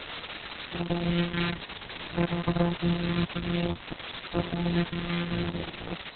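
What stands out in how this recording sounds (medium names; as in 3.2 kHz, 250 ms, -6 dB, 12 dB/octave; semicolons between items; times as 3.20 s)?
a buzz of ramps at a fixed pitch in blocks of 256 samples; phasing stages 2, 0.54 Hz, lowest notch 670–4200 Hz; a quantiser's noise floor 6-bit, dither triangular; Opus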